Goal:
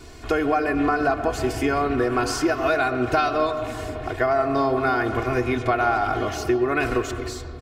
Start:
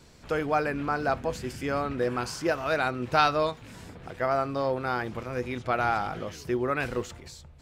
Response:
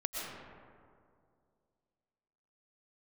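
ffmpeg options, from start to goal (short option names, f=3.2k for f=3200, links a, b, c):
-filter_complex "[0:a]aecho=1:1:2.8:0.91,acompressor=threshold=-28dB:ratio=6,asplit=2[a][b];[1:a]atrim=start_sample=2205,lowpass=3.3k[c];[b][c]afir=irnorm=-1:irlink=0,volume=-8dB[d];[a][d]amix=inputs=2:normalize=0,volume=7dB"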